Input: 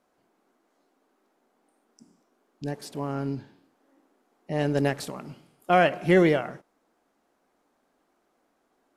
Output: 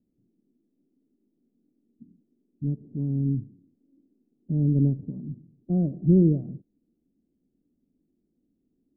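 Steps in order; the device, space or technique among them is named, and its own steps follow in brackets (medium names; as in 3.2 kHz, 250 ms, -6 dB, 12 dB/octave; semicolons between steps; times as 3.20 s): the neighbour's flat through the wall (low-pass 270 Hz 24 dB/octave; peaking EQ 110 Hz +3.5 dB); trim +6.5 dB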